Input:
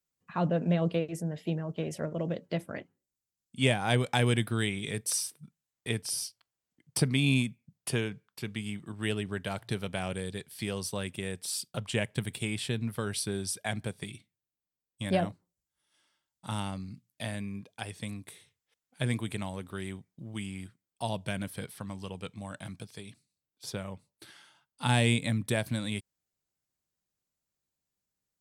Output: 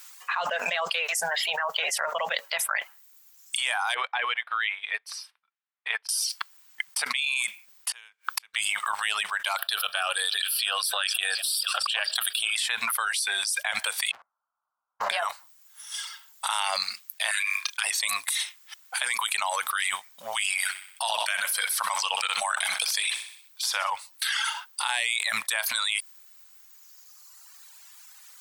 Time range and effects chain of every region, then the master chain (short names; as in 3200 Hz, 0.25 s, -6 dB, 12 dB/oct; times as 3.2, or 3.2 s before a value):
3.94–6.09 HPF 270 Hz + air absorption 380 m + upward expander 2.5:1, over -45 dBFS
7.91–8.54 flipped gate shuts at -36 dBFS, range -40 dB + three-band squash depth 70%
9.56–12.56 fixed phaser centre 1400 Hz, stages 8 + delay with a stepping band-pass 0.24 s, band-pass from 5900 Hz, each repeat -0.7 oct, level -11 dB + core saturation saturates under 380 Hz
14.11–15.1 Chebyshev low-pass 1400 Hz, order 6 + sample leveller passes 2 + compressor 2.5:1, threshold -43 dBFS
17.31–17.84 steep high-pass 1100 Hz + doubler 31 ms -9 dB
20.56–23.9 HPF 150 Hz 6 dB/oct + feedback echo 63 ms, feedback 51%, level -10 dB
whole clip: reverb removal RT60 1.5 s; inverse Chebyshev high-pass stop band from 350 Hz, stop band 50 dB; fast leveller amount 100%; gain +1 dB